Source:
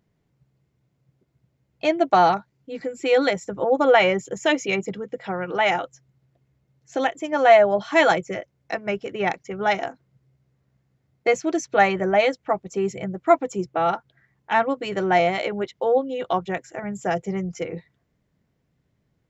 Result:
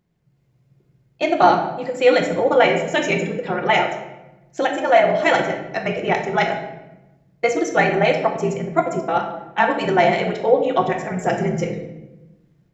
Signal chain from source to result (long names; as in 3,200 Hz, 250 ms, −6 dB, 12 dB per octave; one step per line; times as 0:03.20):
automatic gain control gain up to 6 dB
time stretch by overlap-add 0.66×, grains 32 ms
rectangular room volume 440 cubic metres, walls mixed, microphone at 0.91 metres
level −1 dB